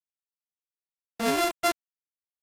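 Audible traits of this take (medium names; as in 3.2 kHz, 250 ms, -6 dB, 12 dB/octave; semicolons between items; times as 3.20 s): a buzz of ramps at a fixed pitch in blocks of 64 samples; random-step tremolo 3.5 Hz; a quantiser's noise floor 6-bit, dither none; AAC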